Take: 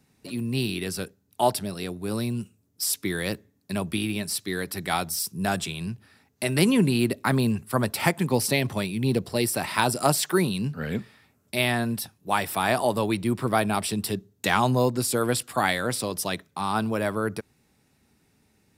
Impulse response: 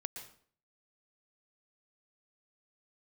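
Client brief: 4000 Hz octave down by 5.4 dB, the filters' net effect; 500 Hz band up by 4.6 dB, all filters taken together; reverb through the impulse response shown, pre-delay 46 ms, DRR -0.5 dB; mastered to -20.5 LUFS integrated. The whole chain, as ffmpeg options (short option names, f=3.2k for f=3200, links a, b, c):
-filter_complex "[0:a]equalizer=f=500:t=o:g=6,equalizer=f=4k:t=o:g=-7,asplit=2[a][b];[1:a]atrim=start_sample=2205,adelay=46[c];[b][c]afir=irnorm=-1:irlink=0,volume=2dB[d];[a][d]amix=inputs=2:normalize=0,volume=1dB"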